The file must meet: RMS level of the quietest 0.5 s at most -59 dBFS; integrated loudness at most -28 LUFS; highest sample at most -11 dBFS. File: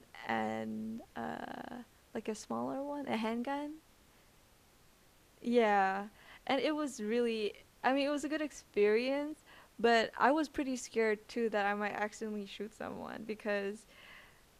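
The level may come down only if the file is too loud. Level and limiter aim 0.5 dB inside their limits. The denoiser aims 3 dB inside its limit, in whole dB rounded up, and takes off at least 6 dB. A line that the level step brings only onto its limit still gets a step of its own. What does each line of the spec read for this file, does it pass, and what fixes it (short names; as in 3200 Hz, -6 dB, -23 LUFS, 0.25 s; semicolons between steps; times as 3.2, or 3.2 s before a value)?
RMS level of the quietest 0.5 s -65 dBFS: OK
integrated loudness -35.5 LUFS: OK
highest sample -14.0 dBFS: OK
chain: none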